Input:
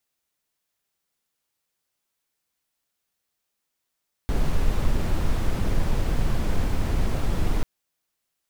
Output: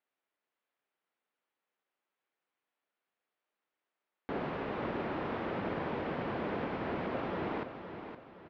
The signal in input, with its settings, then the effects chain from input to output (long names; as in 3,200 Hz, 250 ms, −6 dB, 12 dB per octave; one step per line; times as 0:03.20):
noise brown, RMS −20.5 dBFS 3.34 s
band-pass filter 300–3,000 Hz
high-frequency loss of the air 270 metres
on a send: repeating echo 516 ms, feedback 39%, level −9 dB